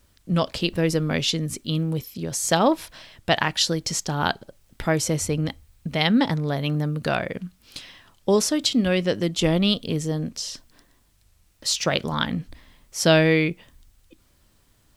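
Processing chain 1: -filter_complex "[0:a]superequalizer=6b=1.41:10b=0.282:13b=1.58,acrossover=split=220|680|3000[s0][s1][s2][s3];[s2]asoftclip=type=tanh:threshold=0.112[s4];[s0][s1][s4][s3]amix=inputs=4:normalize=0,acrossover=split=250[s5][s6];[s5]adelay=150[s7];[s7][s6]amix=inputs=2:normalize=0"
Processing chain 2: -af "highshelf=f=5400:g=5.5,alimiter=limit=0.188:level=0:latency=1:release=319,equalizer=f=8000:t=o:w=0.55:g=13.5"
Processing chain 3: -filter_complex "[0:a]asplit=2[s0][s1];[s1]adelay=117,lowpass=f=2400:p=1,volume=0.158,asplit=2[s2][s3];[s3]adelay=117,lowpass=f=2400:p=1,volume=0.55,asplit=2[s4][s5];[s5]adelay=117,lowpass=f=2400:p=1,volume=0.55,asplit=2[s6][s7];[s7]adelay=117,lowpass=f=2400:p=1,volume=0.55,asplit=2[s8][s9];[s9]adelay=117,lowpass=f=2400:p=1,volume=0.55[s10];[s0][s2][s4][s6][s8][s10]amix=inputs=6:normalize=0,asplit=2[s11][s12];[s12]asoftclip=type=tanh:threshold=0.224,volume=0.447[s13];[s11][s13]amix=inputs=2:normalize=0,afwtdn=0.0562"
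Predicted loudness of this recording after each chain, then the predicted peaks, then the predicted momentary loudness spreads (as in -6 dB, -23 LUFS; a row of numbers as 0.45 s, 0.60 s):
-23.5 LUFS, -23.0 LUFS, -21.5 LUFS; -5.0 dBFS, -3.5 dBFS, -4.0 dBFS; 14 LU, 16 LU, 12 LU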